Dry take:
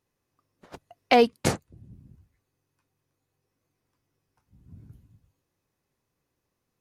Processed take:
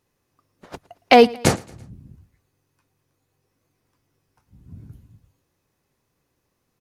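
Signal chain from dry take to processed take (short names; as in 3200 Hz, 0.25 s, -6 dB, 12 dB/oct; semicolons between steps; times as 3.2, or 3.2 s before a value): feedback echo 0.112 s, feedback 49%, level -23 dB; gain +7 dB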